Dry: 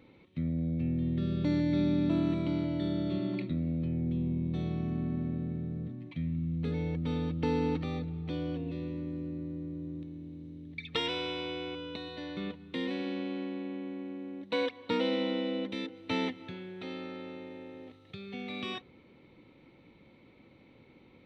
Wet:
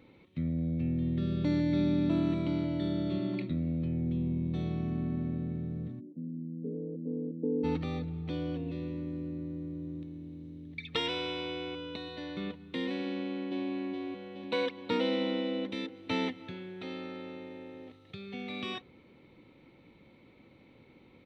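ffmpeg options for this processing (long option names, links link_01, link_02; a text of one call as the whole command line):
ffmpeg -i in.wav -filter_complex "[0:a]asplit=3[link_01][link_02][link_03];[link_01]afade=type=out:start_time=5.99:duration=0.02[link_04];[link_02]asuperpass=centerf=310:order=8:qfactor=0.93,afade=type=in:start_time=5.99:duration=0.02,afade=type=out:start_time=7.63:duration=0.02[link_05];[link_03]afade=type=in:start_time=7.63:duration=0.02[link_06];[link_04][link_05][link_06]amix=inputs=3:normalize=0,asplit=2[link_07][link_08];[link_08]afade=type=in:start_time=13.09:duration=0.01,afade=type=out:start_time=13.72:duration=0.01,aecho=0:1:420|840|1260|1680|2100|2520|2940|3360|3780:0.841395|0.504837|0.302902|0.181741|0.109045|0.0654269|0.0392561|0.0235537|0.0141322[link_09];[link_07][link_09]amix=inputs=2:normalize=0" out.wav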